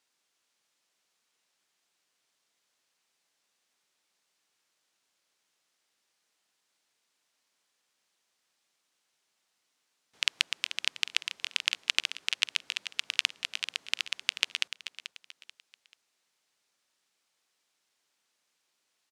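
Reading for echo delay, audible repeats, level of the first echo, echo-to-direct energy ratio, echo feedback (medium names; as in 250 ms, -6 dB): 436 ms, 3, -12.0 dB, -11.5 dB, 33%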